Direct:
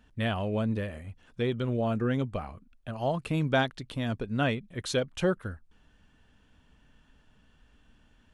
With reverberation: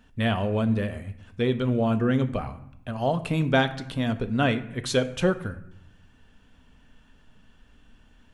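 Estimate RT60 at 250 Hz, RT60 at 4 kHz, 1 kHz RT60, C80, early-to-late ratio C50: 1.0 s, 0.55 s, 0.75 s, 16.5 dB, 14.5 dB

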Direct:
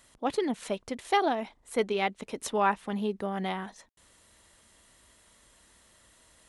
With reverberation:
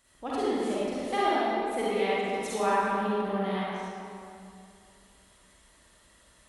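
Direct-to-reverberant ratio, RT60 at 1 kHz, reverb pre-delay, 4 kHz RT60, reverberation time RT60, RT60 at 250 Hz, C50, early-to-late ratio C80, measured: -9.0 dB, 2.5 s, 38 ms, 1.6 s, 2.5 s, 2.6 s, -7.0 dB, -3.5 dB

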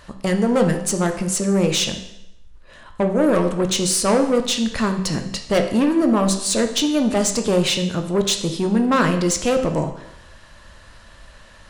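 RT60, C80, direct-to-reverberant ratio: 0.85 s, 11.5 dB, 5.5 dB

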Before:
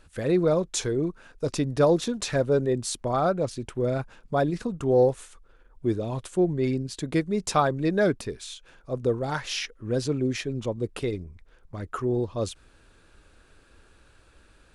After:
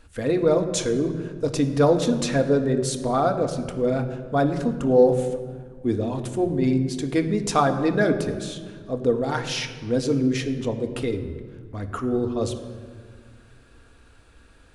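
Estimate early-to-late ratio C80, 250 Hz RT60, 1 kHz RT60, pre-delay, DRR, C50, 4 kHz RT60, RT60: 11.0 dB, 2.4 s, 1.7 s, 3 ms, 5.5 dB, 9.5 dB, 1.3 s, 1.8 s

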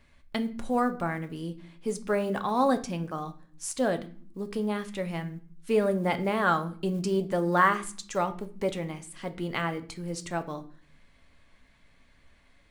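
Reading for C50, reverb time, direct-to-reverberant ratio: 15.5 dB, no single decay rate, 8.0 dB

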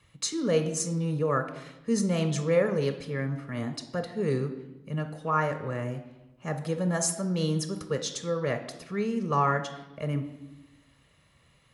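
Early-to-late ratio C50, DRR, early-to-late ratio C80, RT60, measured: 10.5 dB, 7.0 dB, 13.0 dB, 1.0 s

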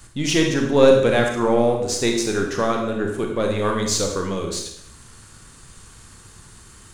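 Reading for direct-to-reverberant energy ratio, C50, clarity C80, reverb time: 2.0 dB, 4.5 dB, 7.5 dB, 0.75 s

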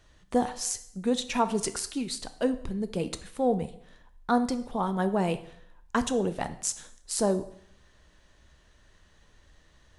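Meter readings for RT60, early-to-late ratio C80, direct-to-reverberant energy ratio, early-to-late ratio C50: 0.65 s, 17.0 dB, 10.5 dB, 14.0 dB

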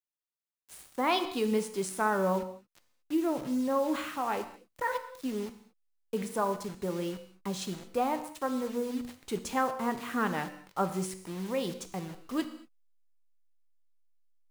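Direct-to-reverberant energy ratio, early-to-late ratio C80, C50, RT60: 8.0 dB, 13.0 dB, 11.0 dB, no single decay rate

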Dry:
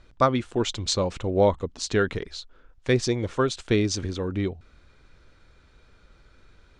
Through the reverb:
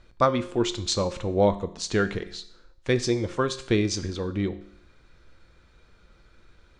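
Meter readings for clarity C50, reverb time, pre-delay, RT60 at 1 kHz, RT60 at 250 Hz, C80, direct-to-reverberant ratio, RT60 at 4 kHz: 14.5 dB, 0.65 s, 6 ms, 0.65 s, 0.65 s, 17.5 dB, 10.5 dB, 0.65 s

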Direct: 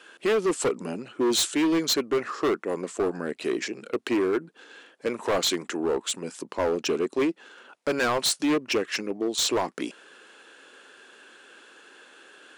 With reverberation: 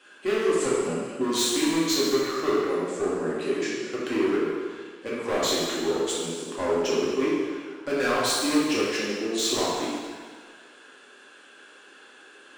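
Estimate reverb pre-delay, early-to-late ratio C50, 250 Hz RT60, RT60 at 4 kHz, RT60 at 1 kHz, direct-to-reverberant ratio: 3 ms, -1.5 dB, 1.5 s, 1.6 s, 1.8 s, -7.0 dB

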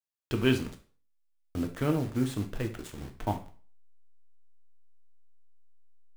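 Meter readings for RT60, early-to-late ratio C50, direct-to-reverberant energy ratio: 0.45 s, 12.0 dB, 4.5 dB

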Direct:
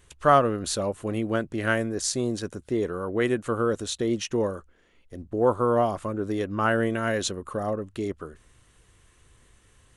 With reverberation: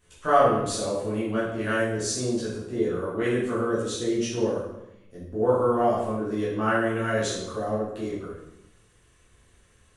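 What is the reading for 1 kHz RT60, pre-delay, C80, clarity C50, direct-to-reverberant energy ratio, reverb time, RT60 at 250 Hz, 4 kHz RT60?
0.85 s, 8 ms, 4.5 dB, 1.0 dB, -10.0 dB, 0.90 s, 1.1 s, 0.70 s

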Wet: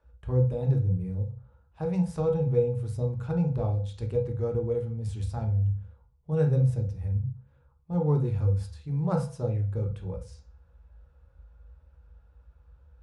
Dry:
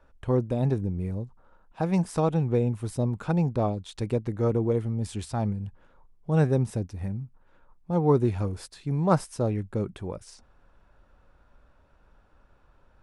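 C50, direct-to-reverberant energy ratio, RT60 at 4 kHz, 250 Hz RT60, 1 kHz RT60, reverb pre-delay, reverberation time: 10.5 dB, 1.0 dB, 0.40 s, 0.55 s, 0.45 s, 3 ms, 0.40 s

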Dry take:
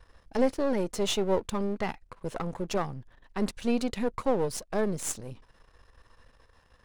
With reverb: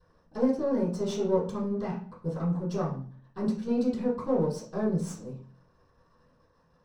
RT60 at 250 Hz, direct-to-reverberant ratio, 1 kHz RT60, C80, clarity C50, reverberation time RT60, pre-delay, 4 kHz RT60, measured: 0.70 s, -11.0 dB, 0.45 s, 11.5 dB, 7.0 dB, 0.45 s, 3 ms, 0.40 s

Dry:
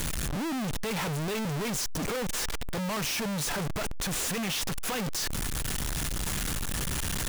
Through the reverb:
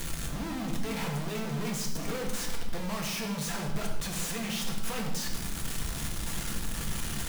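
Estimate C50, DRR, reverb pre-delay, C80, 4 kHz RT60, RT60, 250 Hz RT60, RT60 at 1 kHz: 5.0 dB, 0.0 dB, 4 ms, 7.5 dB, 0.90 s, 1.1 s, 1.9 s, 0.90 s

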